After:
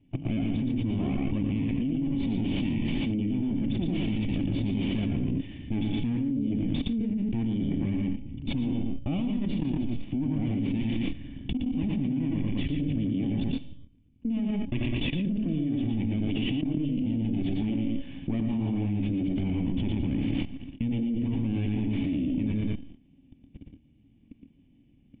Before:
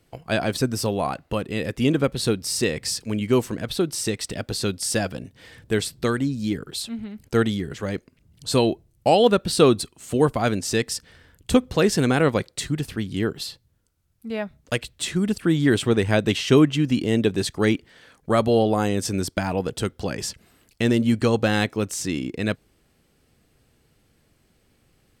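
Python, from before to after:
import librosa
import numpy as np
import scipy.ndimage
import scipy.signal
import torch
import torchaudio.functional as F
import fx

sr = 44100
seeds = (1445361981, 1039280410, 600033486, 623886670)

y = fx.lower_of_two(x, sr, delay_ms=1.1)
y = fx.high_shelf(y, sr, hz=2200.0, db=-9.5)
y = fx.comb_fb(y, sr, f0_hz=280.0, decay_s=0.54, harmonics='all', damping=0.0, mix_pct=60)
y = y + 10.0 ** (-11.5 / 20.0) * np.pad(y, (int(88 * sr / 1000.0), 0))[:len(y)]
y = fx.level_steps(y, sr, step_db=23)
y = fx.formant_cascade(y, sr, vowel='i')
y = fx.echo_multitap(y, sr, ms=(116, 142), db=(-3.5, -12.0))
y = fx.env_flatten(y, sr, amount_pct=100)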